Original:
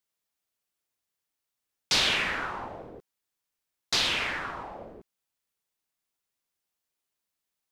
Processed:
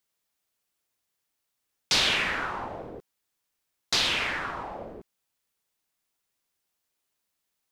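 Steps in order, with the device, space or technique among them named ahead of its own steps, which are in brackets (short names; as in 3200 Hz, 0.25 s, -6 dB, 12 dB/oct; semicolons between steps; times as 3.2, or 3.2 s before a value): parallel compression (in parallel at -3.5 dB: compressor, threshold -39 dBFS, peak gain reduction 17 dB)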